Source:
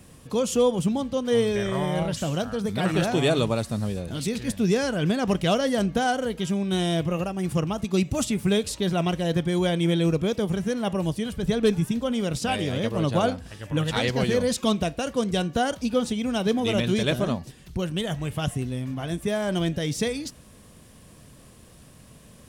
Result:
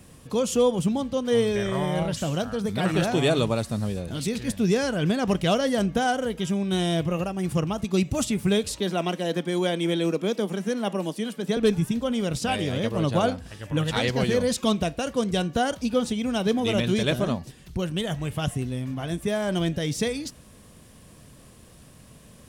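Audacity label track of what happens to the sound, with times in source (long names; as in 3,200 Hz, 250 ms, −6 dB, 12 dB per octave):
5.800000	6.590000	notch filter 4,300 Hz
8.800000	11.570000	Butterworth high-pass 190 Hz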